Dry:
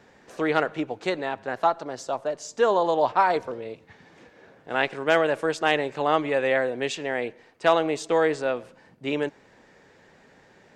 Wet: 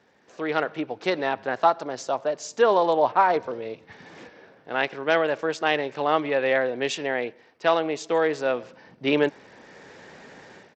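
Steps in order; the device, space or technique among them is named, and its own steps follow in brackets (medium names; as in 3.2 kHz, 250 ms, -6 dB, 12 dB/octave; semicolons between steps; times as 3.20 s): 2.93–3.44 s: low-pass 2.5 kHz 6 dB/octave; Bluetooth headset (high-pass 130 Hz 6 dB/octave; level rider gain up to 16 dB; resampled via 16 kHz; trim -6.5 dB; SBC 64 kbps 32 kHz)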